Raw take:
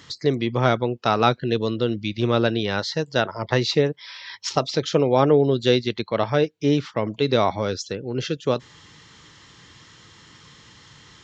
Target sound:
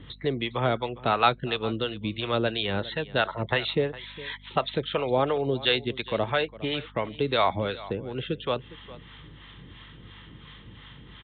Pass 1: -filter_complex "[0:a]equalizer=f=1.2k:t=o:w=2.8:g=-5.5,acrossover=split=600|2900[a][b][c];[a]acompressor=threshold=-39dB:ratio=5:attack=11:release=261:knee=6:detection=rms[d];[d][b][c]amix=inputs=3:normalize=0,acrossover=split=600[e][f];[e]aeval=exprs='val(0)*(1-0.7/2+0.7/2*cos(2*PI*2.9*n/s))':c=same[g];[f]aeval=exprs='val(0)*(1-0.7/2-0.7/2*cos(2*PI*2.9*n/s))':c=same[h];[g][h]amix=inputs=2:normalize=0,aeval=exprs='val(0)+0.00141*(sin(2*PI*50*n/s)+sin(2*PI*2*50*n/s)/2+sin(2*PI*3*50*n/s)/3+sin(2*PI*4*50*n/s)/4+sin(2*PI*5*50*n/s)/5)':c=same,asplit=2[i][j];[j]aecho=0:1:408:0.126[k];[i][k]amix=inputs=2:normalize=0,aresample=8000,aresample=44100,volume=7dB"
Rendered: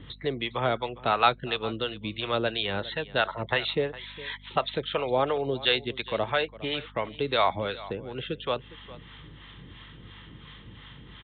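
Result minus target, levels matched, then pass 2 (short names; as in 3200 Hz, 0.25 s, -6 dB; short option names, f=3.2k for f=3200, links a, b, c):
compressor: peak gain reduction +5 dB
-filter_complex "[0:a]equalizer=f=1.2k:t=o:w=2.8:g=-5.5,acrossover=split=600|2900[a][b][c];[a]acompressor=threshold=-33dB:ratio=5:attack=11:release=261:knee=6:detection=rms[d];[d][b][c]amix=inputs=3:normalize=0,acrossover=split=600[e][f];[e]aeval=exprs='val(0)*(1-0.7/2+0.7/2*cos(2*PI*2.9*n/s))':c=same[g];[f]aeval=exprs='val(0)*(1-0.7/2-0.7/2*cos(2*PI*2.9*n/s))':c=same[h];[g][h]amix=inputs=2:normalize=0,aeval=exprs='val(0)+0.00141*(sin(2*PI*50*n/s)+sin(2*PI*2*50*n/s)/2+sin(2*PI*3*50*n/s)/3+sin(2*PI*4*50*n/s)/4+sin(2*PI*5*50*n/s)/5)':c=same,asplit=2[i][j];[j]aecho=0:1:408:0.126[k];[i][k]amix=inputs=2:normalize=0,aresample=8000,aresample=44100,volume=7dB"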